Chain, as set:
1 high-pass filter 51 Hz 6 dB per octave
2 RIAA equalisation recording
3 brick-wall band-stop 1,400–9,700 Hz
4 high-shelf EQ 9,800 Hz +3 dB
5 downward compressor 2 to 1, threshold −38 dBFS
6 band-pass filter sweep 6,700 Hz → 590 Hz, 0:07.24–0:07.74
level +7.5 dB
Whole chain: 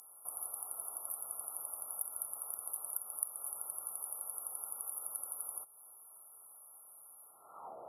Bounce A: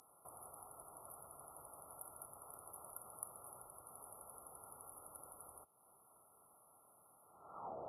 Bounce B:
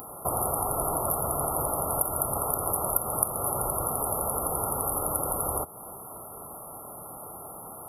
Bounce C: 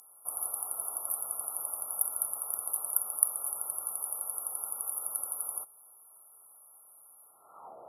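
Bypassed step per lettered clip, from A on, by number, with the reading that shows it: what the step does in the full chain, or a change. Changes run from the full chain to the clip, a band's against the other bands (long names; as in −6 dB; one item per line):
2, change in integrated loudness −14.0 LU
6, change in integrated loudness +12.5 LU
5, average gain reduction 5.5 dB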